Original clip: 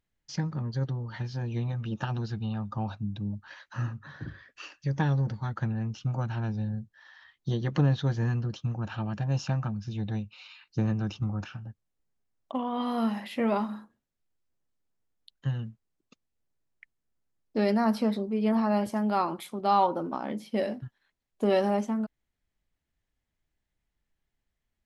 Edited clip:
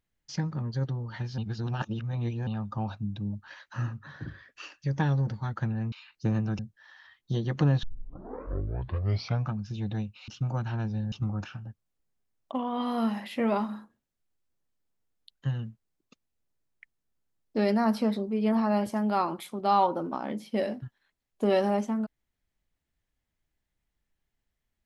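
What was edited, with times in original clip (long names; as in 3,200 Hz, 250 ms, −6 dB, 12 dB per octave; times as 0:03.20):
0:01.38–0:02.47: reverse
0:05.92–0:06.76: swap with 0:10.45–0:11.12
0:08.00: tape start 1.69 s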